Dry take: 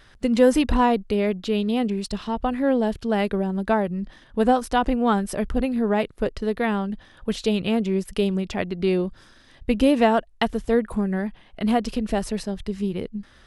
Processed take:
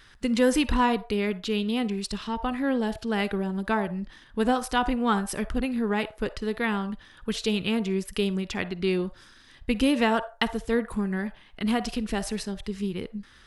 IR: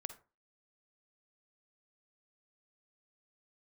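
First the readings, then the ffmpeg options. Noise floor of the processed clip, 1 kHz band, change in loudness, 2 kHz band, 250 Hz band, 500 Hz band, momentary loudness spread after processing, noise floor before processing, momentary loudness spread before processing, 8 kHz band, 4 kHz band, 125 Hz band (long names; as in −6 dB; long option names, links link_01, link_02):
−54 dBFS, −4.0 dB, −4.0 dB, +0.5 dB, −4.0 dB, −6.0 dB, 9 LU, −53 dBFS, 9 LU, +1.0 dB, +1.0 dB, −4.0 dB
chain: -filter_complex "[0:a]asplit=2[link_01][link_02];[link_02]highpass=frequency=600:width=0.5412,highpass=frequency=600:width=1.3066[link_03];[1:a]atrim=start_sample=2205[link_04];[link_03][link_04]afir=irnorm=-1:irlink=0,volume=1.5dB[link_05];[link_01][link_05]amix=inputs=2:normalize=0,volume=-4dB"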